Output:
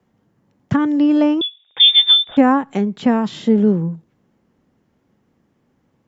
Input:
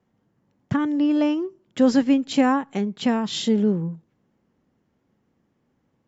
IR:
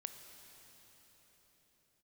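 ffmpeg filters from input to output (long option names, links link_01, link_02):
-filter_complex "[0:a]acrossover=split=120|2000[link_01][link_02][link_03];[link_03]acompressor=threshold=-45dB:ratio=6[link_04];[link_01][link_02][link_04]amix=inputs=3:normalize=0,asettb=1/sr,asplit=3[link_05][link_06][link_07];[link_05]atrim=end=1.414[link_08];[link_06]atrim=start=1.41:end=2.37,asetpts=PTS-STARTPTS,afade=type=in:duration=0.004:curve=qsin,afade=type=out:start_time=0.956:duration=0.004:curve=qsin,lowpass=frequency=3200:width_type=q:width=0.5098,lowpass=frequency=3200:width_type=q:width=0.6013,lowpass=frequency=3200:width_type=q:width=0.9,lowpass=frequency=3200:width_type=q:width=2.563,afreqshift=-3800[link_09];[link_07]atrim=start=2.366[link_10];[link_08][link_09]acrossfade=duration=0.004:curve1=hsin:curve2=qsin[link_11];[link_11][link_10]acrossfade=duration=0.004:curve1=qsin:curve2=hsin,volume=6dB"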